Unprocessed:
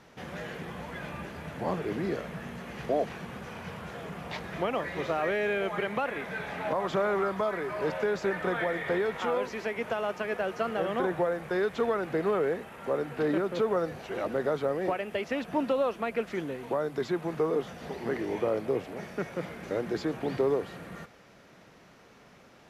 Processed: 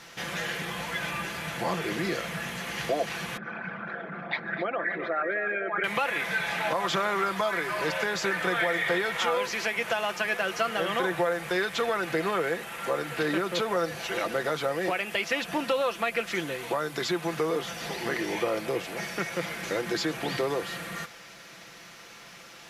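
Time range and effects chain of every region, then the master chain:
0:03.37–0:05.84: spectral envelope exaggerated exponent 2 + loudspeaker in its box 210–4,400 Hz, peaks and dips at 210 Hz +5 dB, 480 Hz −7 dB, 960 Hz −6 dB, 1,500 Hz +8 dB, 2,900 Hz −9 dB + single-tap delay 259 ms −11.5 dB
whole clip: tilt shelving filter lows −8 dB, about 1,300 Hz; comb filter 5.9 ms, depth 47%; downward compressor 1.5 to 1, threshold −36 dBFS; level +7.5 dB

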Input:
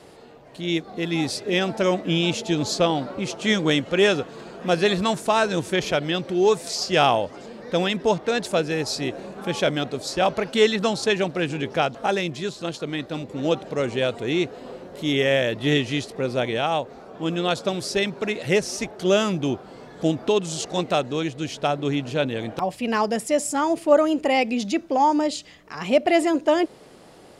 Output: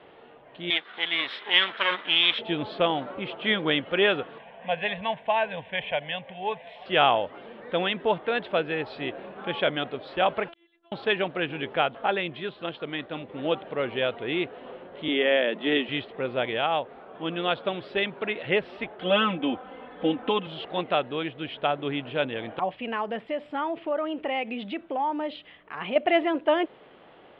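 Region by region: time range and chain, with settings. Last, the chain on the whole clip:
0:00.70–0:02.39: lower of the sound and its delayed copy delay 0.55 ms + meter weighting curve ITU-R 468
0:04.38–0:06.86: low-shelf EQ 180 Hz −4 dB + phaser with its sweep stopped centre 1,300 Hz, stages 6
0:10.48–0:10.92: phases set to zero 339 Hz + gate with flip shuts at −23 dBFS, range −40 dB + multiband upward and downward compressor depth 70%
0:15.08–0:15.89: Chebyshev high-pass filter 170 Hz, order 6 + low-shelf EQ 330 Hz +6 dB
0:19.01–0:20.47: low-pass filter 3,800 Hz 24 dB per octave + comb filter 3.9 ms, depth 98%
0:22.78–0:25.96: high-shelf EQ 8,100 Hz −5 dB + downward compressor 3 to 1, threshold −23 dBFS
whole clip: elliptic low-pass filter 3,300 Hz, stop band 50 dB; low-shelf EQ 330 Hz −10 dB

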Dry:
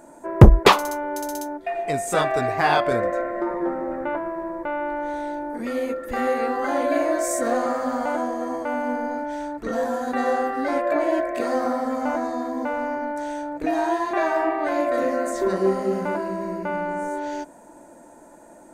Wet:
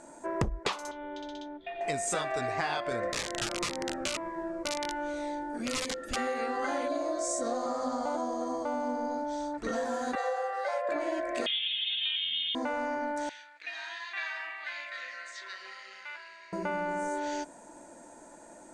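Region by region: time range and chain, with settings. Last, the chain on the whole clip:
0:00.91–0:01.81: transistor ladder low-pass 3,600 Hz, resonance 80% + low-shelf EQ 400 Hz +11.5 dB
0:03.12–0:06.16: wrap-around overflow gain 20 dB + phaser whose notches keep moving one way falling 1.9 Hz
0:06.88–0:09.54: low-pass filter 8,100 Hz + flat-topped bell 2,100 Hz −11.5 dB 1.2 octaves + notch filter 930 Hz, Q 25
0:10.15–0:10.89: Butterworth high-pass 450 Hz 96 dB per octave + tilt shelving filter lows +5 dB, about 640 Hz
0:11.46–0:12.55: low-shelf EQ 350 Hz −10.5 dB + voice inversion scrambler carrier 3,900 Hz
0:13.29–0:16.53: flat-topped band-pass 2,800 Hz, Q 1.1 + log-companded quantiser 8 bits
whole clip: low-pass filter 8,500 Hz 24 dB per octave; high-shelf EQ 2,000 Hz +9 dB; downward compressor 10 to 1, threshold −23 dBFS; level −5 dB

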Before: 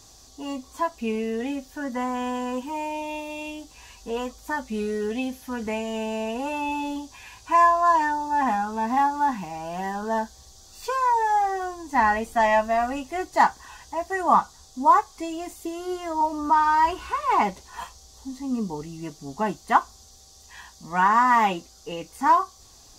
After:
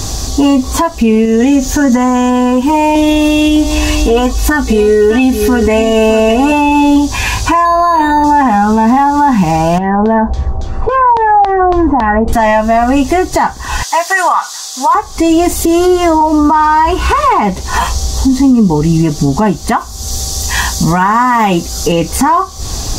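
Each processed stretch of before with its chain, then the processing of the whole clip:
0:01.25–0:02.30: parametric band 6,600 Hz +10.5 dB 0.28 octaves + downward compressor 2 to 1, threshold −34 dBFS
0:02.95–0:06.52: comb filter 2.7 ms, depth 76% + single-tap delay 611 ms −13 dB
0:07.65–0:08.24: high-frequency loss of the air 67 metres + hum removal 81.57 Hz, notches 29 + linearly interpolated sample-rate reduction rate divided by 8×
0:09.78–0:12.33: parametric band 3,800 Hz −13.5 dB 2.2 octaves + downward compressor 12 to 1, threshold −37 dBFS + auto-filter low-pass saw down 3.6 Hz 690–4,000 Hz
0:13.83–0:14.95: high-pass filter 1,300 Hz + downward compressor 2 to 1, threshold −29 dBFS
0:19.77–0:21.92: high-shelf EQ 7,200 Hz +8.5 dB + downward compressor 2 to 1, threshold −22 dBFS
whole clip: low-shelf EQ 290 Hz +10.5 dB; downward compressor 6 to 1, threshold −33 dBFS; boost into a limiter +29.5 dB; level −1 dB

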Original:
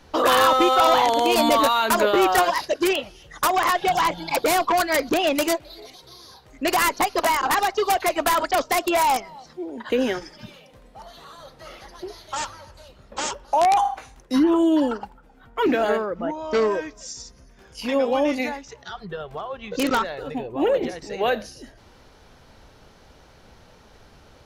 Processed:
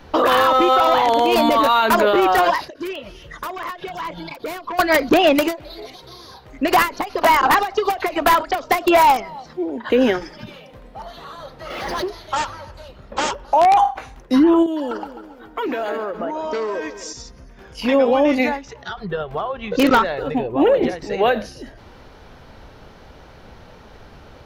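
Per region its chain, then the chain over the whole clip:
0:02.70–0:04.79: downward compressor 4 to 1, threshold −36 dBFS + Butterworth band-reject 790 Hz, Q 5.5
0:11.70–0:12.10: high-pass filter 130 Hz 6 dB per octave + power curve on the samples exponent 0.7 + background raised ahead of every attack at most 25 dB per second
0:14.66–0:17.13: bass and treble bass −9 dB, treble +6 dB + downward compressor, threshold −29 dBFS + echo with a time of its own for lows and highs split 510 Hz, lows 251 ms, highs 138 ms, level −12 dB
whole clip: parametric band 8,500 Hz −10.5 dB 1.6 octaves; brickwall limiter −15.5 dBFS; every ending faded ahead of time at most 190 dB per second; level +8 dB

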